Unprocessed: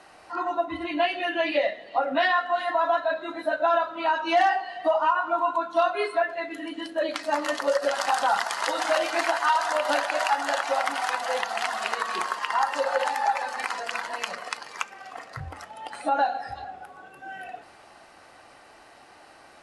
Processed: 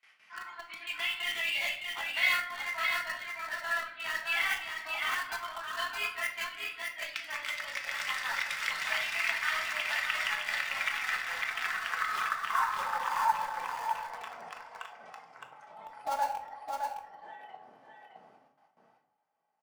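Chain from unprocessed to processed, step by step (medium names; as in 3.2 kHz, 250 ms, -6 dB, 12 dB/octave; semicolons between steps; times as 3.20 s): wind noise 160 Hz -40 dBFS; high-pass 110 Hz 24 dB/octave; tilt EQ +3.5 dB/octave; gate with hold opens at -36 dBFS; band-pass sweep 2 kHz -> 640 Hz, 10.77–13.93 s; in parallel at -10 dB: bit crusher 5-bit; on the sum: formant shift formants +2 st; on a send: delay 614 ms -4.5 dB; on the sum: simulated room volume 550 m³, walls furnished, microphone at 1.5 m; trim -6.5 dB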